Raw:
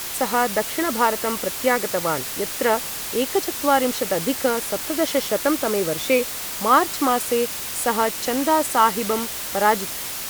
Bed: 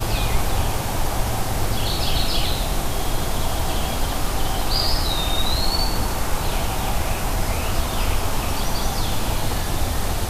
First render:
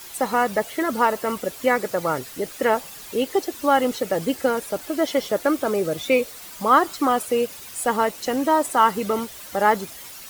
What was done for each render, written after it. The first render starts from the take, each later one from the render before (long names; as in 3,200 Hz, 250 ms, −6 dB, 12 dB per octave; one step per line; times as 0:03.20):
broadband denoise 12 dB, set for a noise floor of −30 dBFS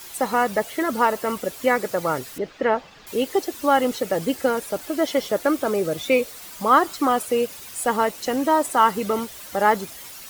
0:02.38–0:03.07: high-frequency loss of the air 200 metres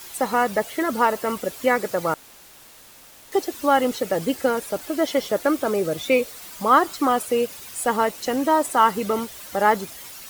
0:02.14–0:03.32: fill with room tone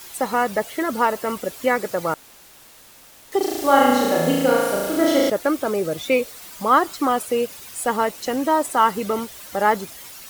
0:03.37–0:05.30: flutter between parallel walls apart 6.2 metres, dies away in 1.4 s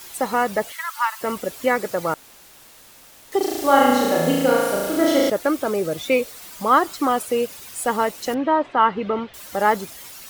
0:00.72–0:01.21: Butterworth high-pass 930 Hz 48 dB per octave
0:08.34–0:09.34: low-pass filter 3,300 Hz 24 dB per octave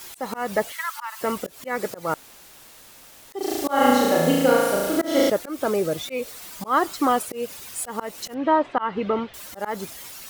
volume swells 193 ms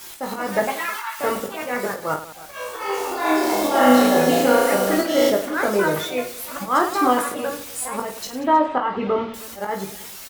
reverse bouncing-ball delay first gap 20 ms, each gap 1.6×, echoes 5
delay with pitch and tempo change per echo 224 ms, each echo +4 semitones, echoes 3, each echo −6 dB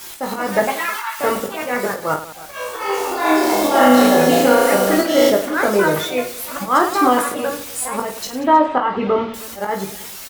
level +4 dB
brickwall limiter −2 dBFS, peak gain reduction 3 dB